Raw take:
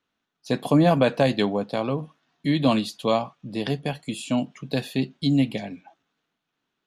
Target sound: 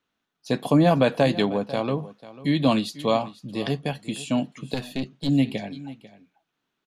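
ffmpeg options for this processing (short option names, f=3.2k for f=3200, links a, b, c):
-filter_complex "[0:a]aecho=1:1:494:0.133,asettb=1/sr,asplit=3[a][b][c];[a]atrim=end=4.744[d];[b]atrim=start=4.74:end=5.29,asetpts=PTS-STARTPTS,afade=t=in:d=0.004:c=qsin,afade=t=out:st=0.546:d=0.004:c=qsin,aeval=exprs='(tanh(8.91*val(0)+0.65)-tanh(0.65))/8.91':c=same[e];[c]atrim=start=5.286[f];[d][e]acrossfade=d=0.004:c1=hsin:c2=qsin[g];[g][f]acrossfade=d=0.004:c1=qsin:c2=hsin"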